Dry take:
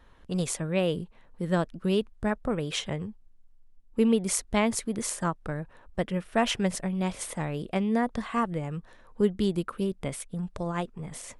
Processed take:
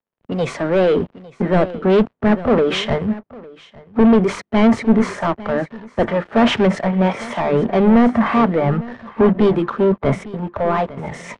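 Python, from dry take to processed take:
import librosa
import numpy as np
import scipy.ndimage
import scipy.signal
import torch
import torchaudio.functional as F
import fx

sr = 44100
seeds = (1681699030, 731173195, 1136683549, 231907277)

y = fx.bin_compress(x, sr, power=0.6)
y = fx.recorder_agc(y, sr, target_db=-15.0, rise_db_per_s=8.1, max_gain_db=30)
y = scipy.signal.sosfilt(scipy.signal.butter(4, 95.0, 'highpass', fs=sr, output='sos'), y)
y = fx.hum_notches(y, sr, base_hz=50, count=7)
y = fx.noise_reduce_blind(y, sr, reduce_db=12)
y = fx.leveller(y, sr, passes=5)
y = fx.spacing_loss(y, sr, db_at_10k=38)
y = y + 10.0 ** (-13.5 / 20.0) * np.pad(y, (int(855 * sr / 1000.0), 0))[:len(y)]
y = fx.band_widen(y, sr, depth_pct=70)
y = y * 10.0 ** (1.5 / 20.0)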